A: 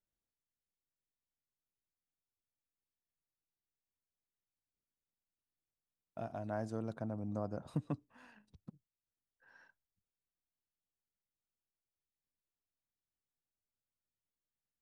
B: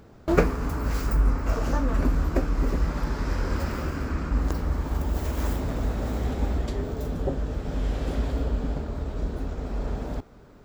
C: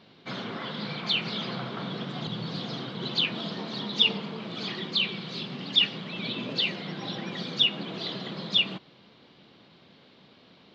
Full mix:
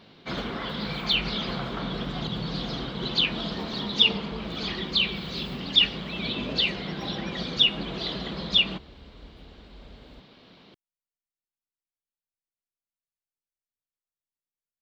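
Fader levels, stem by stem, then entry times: -8.5, -19.0, +2.5 dB; 0.00, 0.00, 0.00 s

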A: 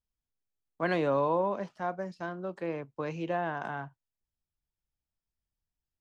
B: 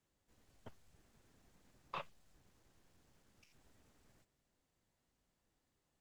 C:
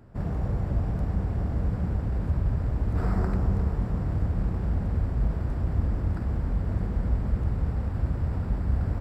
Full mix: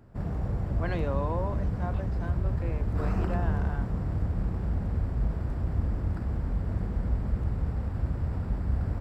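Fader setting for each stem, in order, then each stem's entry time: -5.5, -8.5, -2.5 dB; 0.00, 0.00, 0.00 s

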